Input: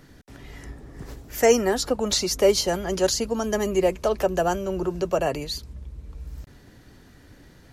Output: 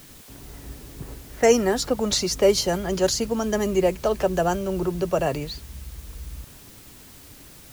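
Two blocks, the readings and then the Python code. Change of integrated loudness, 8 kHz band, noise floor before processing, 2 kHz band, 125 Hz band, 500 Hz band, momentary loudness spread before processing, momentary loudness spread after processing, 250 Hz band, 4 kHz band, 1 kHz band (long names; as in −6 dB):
+0.5 dB, 0.0 dB, −52 dBFS, 0.0 dB, +3.0 dB, +0.5 dB, 21 LU, 20 LU, +2.0 dB, 0.0 dB, 0.0 dB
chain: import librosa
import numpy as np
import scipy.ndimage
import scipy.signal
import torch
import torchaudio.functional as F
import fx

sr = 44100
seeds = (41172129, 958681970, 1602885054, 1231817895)

y = fx.dynamic_eq(x, sr, hz=140.0, q=1.2, threshold_db=-41.0, ratio=4.0, max_db=5)
y = fx.env_lowpass(y, sr, base_hz=750.0, full_db=-19.5)
y = fx.quant_dither(y, sr, seeds[0], bits=8, dither='triangular')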